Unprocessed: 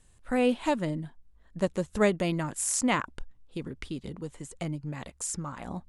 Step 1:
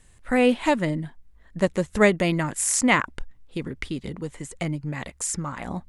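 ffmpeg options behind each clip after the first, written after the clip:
-af "equalizer=f=2k:w=2.8:g=6,volume=5.5dB"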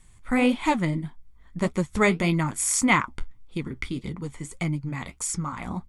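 -af "aecho=1:1:0.9:0.47,flanger=delay=5.4:depth=6.6:regen=-58:speed=1.7:shape=sinusoidal,volume=2.5dB"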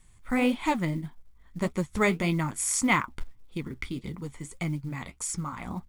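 -af "acrusher=bits=8:mode=log:mix=0:aa=0.000001,volume=-3.5dB"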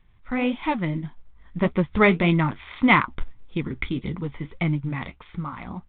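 -af "dynaudnorm=f=300:g=7:m=7.5dB" -ar 8000 -c:a adpcm_g726 -b:a 40k

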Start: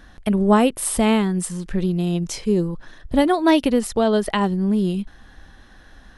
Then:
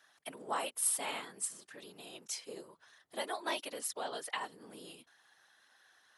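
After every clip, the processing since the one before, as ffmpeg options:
-af "afftfilt=real='hypot(re,im)*cos(2*PI*random(0))':imag='hypot(re,im)*sin(2*PI*random(1))':win_size=512:overlap=0.75,highpass=780,aemphasis=mode=production:type=cd,volume=-8.5dB"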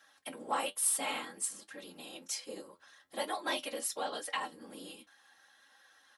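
-filter_complex "[0:a]aecho=1:1:3.7:0.53,asplit=2[a][b];[b]asoftclip=type=tanh:threshold=-31.5dB,volume=-7.5dB[c];[a][c]amix=inputs=2:normalize=0,flanger=delay=9.3:depth=3.5:regen=57:speed=1.2:shape=triangular,volume=3dB"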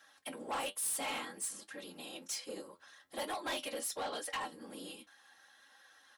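-af "asoftclip=type=tanh:threshold=-34dB,volume=1dB"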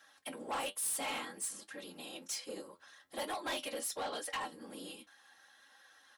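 -af anull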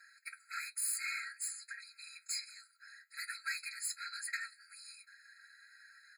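-af "afftfilt=real='re*eq(mod(floor(b*sr/1024/1300),2),1)':imag='im*eq(mod(floor(b*sr/1024/1300),2),1)':win_size=1024:overlap=0.75,volume=4.5dB"

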